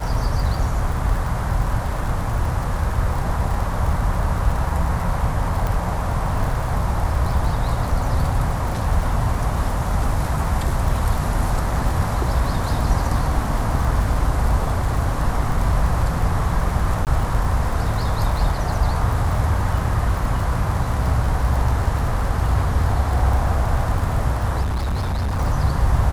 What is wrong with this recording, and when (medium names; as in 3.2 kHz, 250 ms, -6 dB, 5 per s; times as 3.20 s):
crackle 50 per s -26 dBFS
5.67 s: pop
17.05–17.07 s: dropout 18 ms
24.61–25.40 s: clipped -19 dBFS